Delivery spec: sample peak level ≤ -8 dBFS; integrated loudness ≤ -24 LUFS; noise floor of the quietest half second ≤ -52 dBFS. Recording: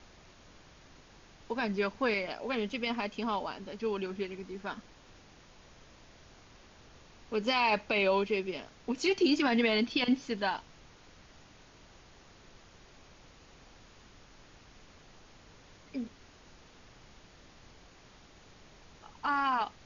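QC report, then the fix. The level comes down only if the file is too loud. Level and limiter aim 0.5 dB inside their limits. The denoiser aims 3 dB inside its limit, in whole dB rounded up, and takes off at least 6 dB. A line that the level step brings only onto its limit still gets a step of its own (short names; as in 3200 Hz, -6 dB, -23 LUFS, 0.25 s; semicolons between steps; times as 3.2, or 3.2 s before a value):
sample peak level -16.5 dBFS: OK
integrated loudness -31.5 LUFS: OK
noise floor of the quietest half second -57 dBFS: OK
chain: none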